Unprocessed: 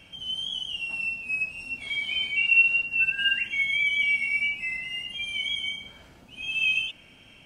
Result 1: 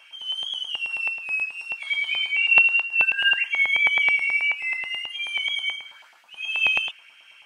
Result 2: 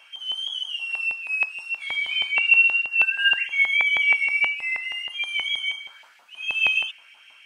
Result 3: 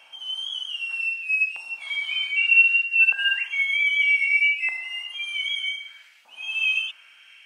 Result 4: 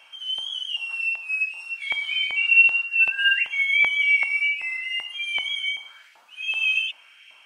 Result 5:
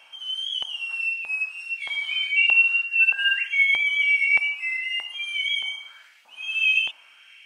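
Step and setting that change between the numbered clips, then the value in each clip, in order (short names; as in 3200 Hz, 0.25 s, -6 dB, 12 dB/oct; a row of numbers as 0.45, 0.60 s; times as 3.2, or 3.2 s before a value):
LFO high-pass, rate: 9.3, 6.3, 0.64, 2.6, 1.6 Hz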